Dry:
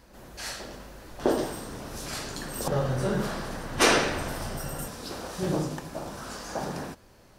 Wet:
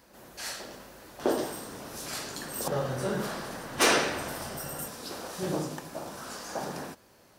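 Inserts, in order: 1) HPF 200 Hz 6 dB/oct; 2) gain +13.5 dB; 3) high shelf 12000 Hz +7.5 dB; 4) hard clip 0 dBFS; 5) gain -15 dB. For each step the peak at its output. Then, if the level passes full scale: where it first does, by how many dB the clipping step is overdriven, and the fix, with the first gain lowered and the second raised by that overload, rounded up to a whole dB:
-8.0, +5.5, +6.0, 0.0, -15.0 dBFS; step 2, 6.0 dB; step 2 +7.5 dB, step 5 -9 dB

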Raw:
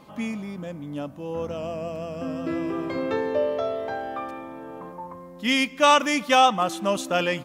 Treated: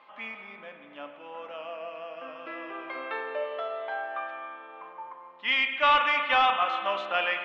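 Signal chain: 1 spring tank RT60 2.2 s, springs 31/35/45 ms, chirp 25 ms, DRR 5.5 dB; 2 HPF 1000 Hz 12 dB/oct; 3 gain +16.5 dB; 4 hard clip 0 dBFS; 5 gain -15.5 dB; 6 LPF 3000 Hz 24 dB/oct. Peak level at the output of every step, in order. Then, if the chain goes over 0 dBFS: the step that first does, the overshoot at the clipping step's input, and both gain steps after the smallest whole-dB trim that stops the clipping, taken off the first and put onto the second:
-6.0, -7.0, +9.5, 0.0, -15.5, -14.0 dBFS; step 3, 9.5 dB; step 3 +6.5 dB, step 5 -5.5 dB

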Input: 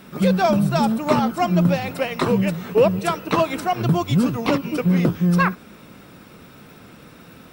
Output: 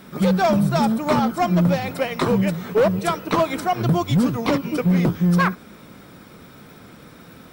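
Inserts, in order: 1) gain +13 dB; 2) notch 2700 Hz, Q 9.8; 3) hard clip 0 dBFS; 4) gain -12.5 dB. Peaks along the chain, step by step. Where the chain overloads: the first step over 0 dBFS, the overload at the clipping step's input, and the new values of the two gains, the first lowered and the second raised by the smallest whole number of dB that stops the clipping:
+6.5, +6.5, 0.0, -12.5 dBFS; step 1, 6.5 dB; step 1 +6 dB, step 4 -5.5 dB

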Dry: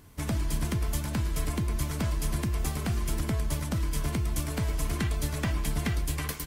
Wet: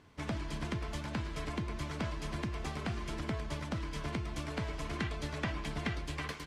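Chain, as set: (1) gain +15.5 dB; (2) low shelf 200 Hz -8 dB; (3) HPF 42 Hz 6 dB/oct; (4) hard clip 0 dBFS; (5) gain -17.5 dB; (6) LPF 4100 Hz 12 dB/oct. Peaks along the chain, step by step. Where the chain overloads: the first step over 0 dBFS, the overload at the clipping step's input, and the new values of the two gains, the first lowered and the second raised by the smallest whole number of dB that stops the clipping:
-2.0, -3.0, -3.0, -3.0, -20.5, -21.5 dBFS; no overload

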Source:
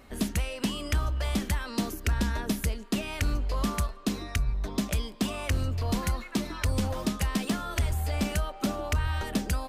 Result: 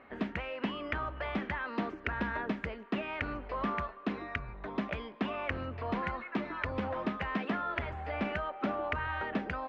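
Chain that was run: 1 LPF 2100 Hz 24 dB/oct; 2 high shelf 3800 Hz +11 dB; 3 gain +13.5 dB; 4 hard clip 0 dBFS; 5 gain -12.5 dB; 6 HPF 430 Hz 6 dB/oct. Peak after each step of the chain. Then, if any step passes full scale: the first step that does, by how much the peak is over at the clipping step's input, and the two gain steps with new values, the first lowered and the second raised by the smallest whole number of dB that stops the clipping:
-19.5, -18.0, -4.5, -4.5, -17.0, -18.0 dBFS; no overload

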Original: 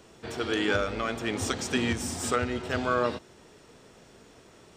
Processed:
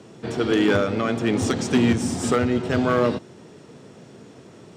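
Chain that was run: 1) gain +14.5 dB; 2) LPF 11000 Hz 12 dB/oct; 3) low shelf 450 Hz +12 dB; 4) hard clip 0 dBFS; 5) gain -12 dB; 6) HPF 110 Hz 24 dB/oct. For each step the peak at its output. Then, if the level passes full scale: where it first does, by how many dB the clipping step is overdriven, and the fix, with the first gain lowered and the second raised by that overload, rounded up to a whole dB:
+1.5, +1.5, +6.5, 0.0, -12.0, -7.5 dBFS; step 1, 6.5 dB; step 1 +7.5 dB, step 5 -5 dB

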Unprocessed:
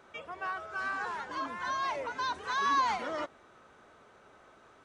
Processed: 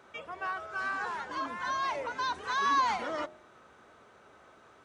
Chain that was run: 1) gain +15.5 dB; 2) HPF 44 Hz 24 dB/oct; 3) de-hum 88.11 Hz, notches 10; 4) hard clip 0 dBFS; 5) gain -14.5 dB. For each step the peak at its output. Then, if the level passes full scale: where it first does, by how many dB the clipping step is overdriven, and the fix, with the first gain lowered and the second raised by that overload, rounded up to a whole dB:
-3.0, -3.0, -3.0, -3.0, -17.5 dBFS; no overload

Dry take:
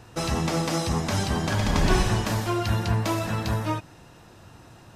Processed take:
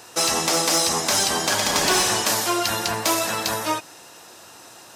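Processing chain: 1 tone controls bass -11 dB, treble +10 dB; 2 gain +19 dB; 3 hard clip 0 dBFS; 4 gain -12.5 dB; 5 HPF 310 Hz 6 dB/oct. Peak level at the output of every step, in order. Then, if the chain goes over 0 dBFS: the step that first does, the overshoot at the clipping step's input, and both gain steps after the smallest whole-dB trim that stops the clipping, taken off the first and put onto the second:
-11.0, +8.0, 0.0, -12.5, -8.5 dBFS; step 2, 8.0 dB; step 2 +11 dB, step 4 -4.5 dB

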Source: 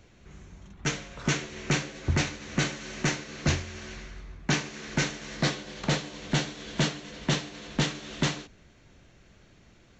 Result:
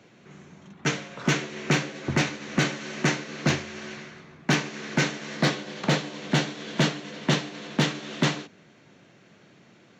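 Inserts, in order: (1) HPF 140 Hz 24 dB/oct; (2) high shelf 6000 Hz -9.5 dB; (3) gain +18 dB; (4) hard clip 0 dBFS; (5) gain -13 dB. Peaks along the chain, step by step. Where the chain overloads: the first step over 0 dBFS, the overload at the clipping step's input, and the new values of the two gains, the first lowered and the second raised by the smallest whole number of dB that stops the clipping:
-13.0, -14.0, +4.0, 0.0, -13.0 dBFS; step 3, 4.0 dB; step 3 +14 dB, step 5 -9 dB

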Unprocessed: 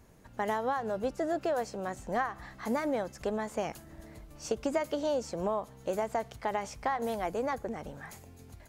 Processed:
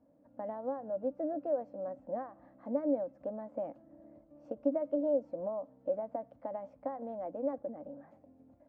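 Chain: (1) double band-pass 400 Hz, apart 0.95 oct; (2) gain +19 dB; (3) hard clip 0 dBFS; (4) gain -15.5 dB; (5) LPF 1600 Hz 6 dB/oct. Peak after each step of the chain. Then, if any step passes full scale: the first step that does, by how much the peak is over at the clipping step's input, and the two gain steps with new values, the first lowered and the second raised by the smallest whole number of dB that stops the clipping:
-21.5, -2.5, -2.5, -18.0, -18.5 dBFS; no overload

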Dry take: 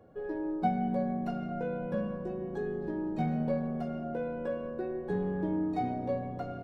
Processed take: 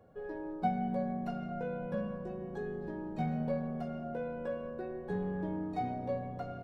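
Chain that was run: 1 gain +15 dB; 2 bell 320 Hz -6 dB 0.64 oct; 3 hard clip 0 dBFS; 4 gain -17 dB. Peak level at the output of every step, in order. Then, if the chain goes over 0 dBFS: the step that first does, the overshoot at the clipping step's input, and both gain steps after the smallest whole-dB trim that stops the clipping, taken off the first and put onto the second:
-2.0, -2.5, -2.5, -19.5 dBFS; no overload

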